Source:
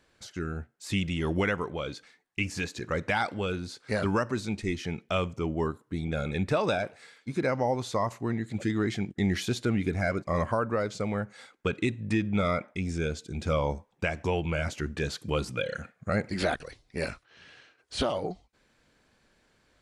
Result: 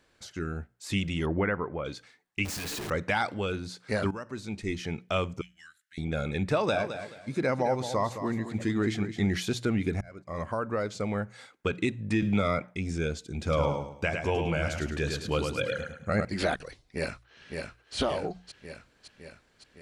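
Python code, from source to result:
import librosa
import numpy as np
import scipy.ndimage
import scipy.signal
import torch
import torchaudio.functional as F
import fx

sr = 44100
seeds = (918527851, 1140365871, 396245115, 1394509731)

y = fx.lowpass(x, sr, hz=2000.0, slope=24, at=(1.25, 1.84), fade=0.02)
y = fx.clip_1bit(y, sr, at=(2.45, 2.9))
y = fx.ellip_highpass(y, sr, hz=1600.0, order=4, stop_db=40, at=(5.41, 5.98))
y = fx.echo_feedback(y, sr, ms=215, feedback_pct=26, wet_db=-10.0, at=(6.74, 9.35), fade=0.02)
y = fx.band_squash(y, sr, depth_pct=70, at=(12.22, 12.62))
y = fx.echo_feedback(y, sr, ms=105, feedback_pct=33, wet_db=-5, at=(13.42, 16.25))
y = fx.echo_throw(y, sr, start_s=16.83, length_s=1.12, ms=560, feedback_pct=65, wet_db=-4.5)
y = fx.edit(y, sr, fx.fade_in_from(start_s=4.11, length_s=0.7, floor_db=-16.0),
    fx.fade_in_span(start_s=10.01, length_s=1.23, curve='qsin'), tone=tone)
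y = fx.hum_notches(y, sr, base_hz=60, count=3)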